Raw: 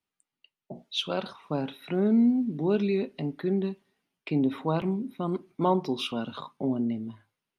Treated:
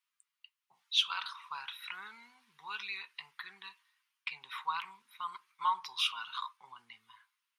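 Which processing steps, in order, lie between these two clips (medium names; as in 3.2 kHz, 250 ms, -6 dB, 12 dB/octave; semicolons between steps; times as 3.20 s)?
elliptic high-pass 1 kHz, stop band 40 dB; trim +2.5 dB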